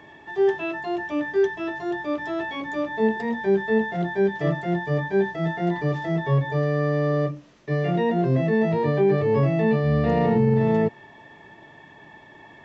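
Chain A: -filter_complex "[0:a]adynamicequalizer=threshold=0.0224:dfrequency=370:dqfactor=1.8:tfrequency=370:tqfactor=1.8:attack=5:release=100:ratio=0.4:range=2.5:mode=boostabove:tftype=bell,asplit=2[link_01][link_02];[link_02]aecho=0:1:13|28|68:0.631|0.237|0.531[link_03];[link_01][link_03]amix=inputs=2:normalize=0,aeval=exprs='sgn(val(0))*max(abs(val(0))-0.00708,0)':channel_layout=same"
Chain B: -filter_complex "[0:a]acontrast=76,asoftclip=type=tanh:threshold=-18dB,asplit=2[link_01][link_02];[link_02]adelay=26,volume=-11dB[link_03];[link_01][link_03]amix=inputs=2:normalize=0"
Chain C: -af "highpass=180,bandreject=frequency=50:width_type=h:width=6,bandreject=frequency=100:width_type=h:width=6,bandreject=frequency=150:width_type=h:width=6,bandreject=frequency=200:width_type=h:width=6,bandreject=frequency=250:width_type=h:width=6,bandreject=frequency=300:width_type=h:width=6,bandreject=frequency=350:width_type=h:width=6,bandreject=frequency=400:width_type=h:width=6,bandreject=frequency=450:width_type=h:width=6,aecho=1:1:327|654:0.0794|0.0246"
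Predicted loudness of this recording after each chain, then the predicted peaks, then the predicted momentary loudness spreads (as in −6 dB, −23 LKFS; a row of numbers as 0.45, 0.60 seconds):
−17.5, −22.0, −25.0 LKFS; −3.5, −16.0, −11.5 dBFS; 13, 19, 8 LU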